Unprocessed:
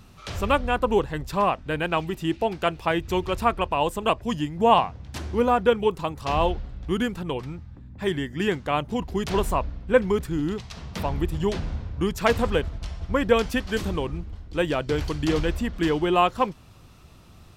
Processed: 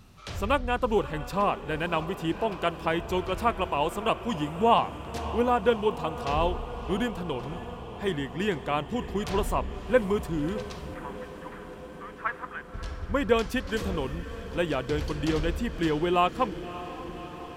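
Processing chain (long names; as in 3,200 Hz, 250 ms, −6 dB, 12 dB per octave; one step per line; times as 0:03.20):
0:10.94–0:12.74: flat-topped band-pass 1,400 Hz, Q 1.7
feedback delay with all-pass diffusion 587 ms, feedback 74%, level −14 dB
level −3.5 dB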